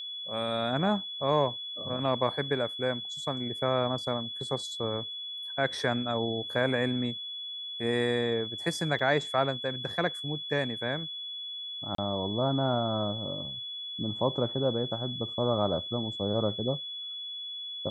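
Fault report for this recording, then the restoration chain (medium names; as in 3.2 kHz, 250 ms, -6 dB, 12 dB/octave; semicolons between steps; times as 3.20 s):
whine 3.4 kHz -36 dBFS
8.99 s: dropout 5 ms
11.95–11.98 s: dropout 33 ms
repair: band-stop 3.4 kHz, Q 30; interpolate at 8.99 s, 5 ms; interpolate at 11.95 s, 33 ms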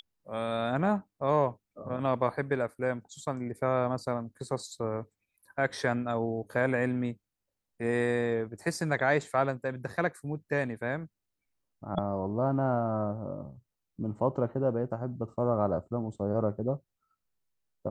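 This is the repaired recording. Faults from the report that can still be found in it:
nothing left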